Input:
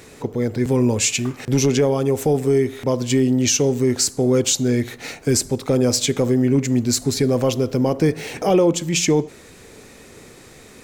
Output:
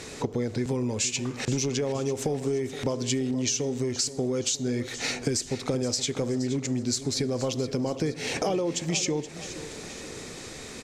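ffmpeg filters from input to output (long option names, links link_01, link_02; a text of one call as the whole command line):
ffmpeg -i in.wav -af "lowpass=5600,bass=frequency=250:gain=-1,treble=frequency=4000:gain=10,acompressor=threshold=-27dB:ratio=12,aecho=1:1:473|946|1419|1892|2365:0.2|0.0958|0.046|0.0221|0.0106,volume=2.5dB" out.wav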